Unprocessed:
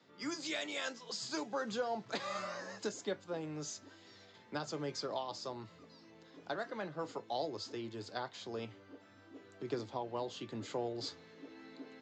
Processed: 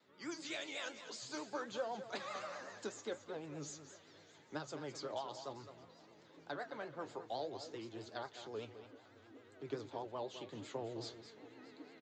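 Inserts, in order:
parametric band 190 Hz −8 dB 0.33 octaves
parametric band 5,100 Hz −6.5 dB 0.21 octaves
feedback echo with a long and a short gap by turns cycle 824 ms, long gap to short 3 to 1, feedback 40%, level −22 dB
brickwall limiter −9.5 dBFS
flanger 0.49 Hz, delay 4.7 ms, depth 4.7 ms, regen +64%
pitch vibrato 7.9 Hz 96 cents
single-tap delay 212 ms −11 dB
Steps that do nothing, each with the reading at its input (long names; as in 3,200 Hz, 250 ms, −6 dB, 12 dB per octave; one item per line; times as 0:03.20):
brickwall limiter −9.5 dBFS: peak of its input −24.5 dBFS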